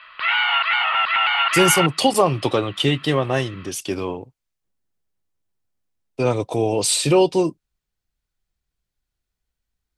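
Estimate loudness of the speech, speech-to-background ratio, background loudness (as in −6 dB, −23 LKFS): −20.0 LKFS, −2.0 dB, −18.0 LKFS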